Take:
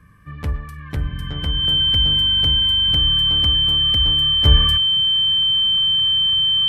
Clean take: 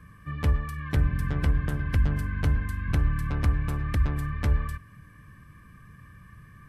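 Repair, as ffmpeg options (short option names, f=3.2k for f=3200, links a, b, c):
-filter_complex "[0:a]bandreject=f=3.1k:w=30,asplit=3[a][b][c];[a]afade=t=out:st=4.05:d=0.02[d];[b]highpass=f=140:w=0.5412,highpass=f=140:w=1.3066,afade=t=in:st=4.05:d=0.02,afade=t=out:st=4.17:d=0.02[e];[c]afade=t=in:st=4.17:d=0.02[f];[d][e][f]amix=inputs=3:normalize=0,asetnsamples=n=441:p=0,asendcmd='4.45 volume volume -10dB',volume=0dB"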